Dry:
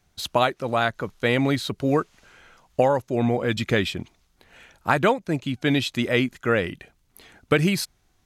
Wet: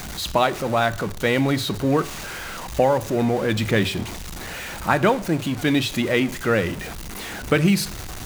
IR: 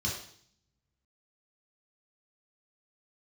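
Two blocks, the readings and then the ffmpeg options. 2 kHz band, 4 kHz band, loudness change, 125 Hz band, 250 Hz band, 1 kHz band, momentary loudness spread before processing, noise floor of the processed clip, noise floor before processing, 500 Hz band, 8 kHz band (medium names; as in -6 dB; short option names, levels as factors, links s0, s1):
+1.5 dB, +2.0 dB, +1.5 dB, +2.5 dB, +2.5 dB, +2.0 dB, 7 LU, -33 dBFS, -67 dBFS, +1.5 dB, +6.5 dB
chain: -filter_complex "[0:a]aeval=exprs='val(0)+0.5*0.0422*sgn(val(0))':c=same,asplit=2[s0][s1];[1:a]atrim=start_sample=2205[s2];[s1][s2]afir=irnorm=-1:irlink=0,volume=0.119[s3];[s0][s3]amix=inputs=2:normalize=0"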